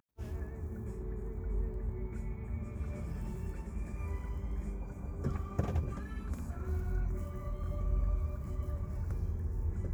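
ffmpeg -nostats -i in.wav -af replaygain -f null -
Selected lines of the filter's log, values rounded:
track_gain = +27.3 dB
track_peak = 0.104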